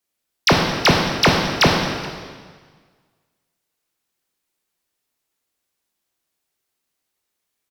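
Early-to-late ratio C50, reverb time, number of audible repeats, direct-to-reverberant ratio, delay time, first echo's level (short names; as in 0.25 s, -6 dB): 2.5 dB, 1.6 s, 1, 0.0 dB, 0.425 s, -20.5 dB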